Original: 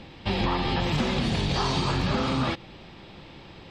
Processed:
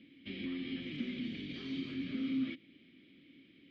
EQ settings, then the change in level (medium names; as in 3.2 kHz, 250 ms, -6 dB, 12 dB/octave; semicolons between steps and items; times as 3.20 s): vowel filter i; low-pass 8 kHz; distance through air 57 m; -2.5 dB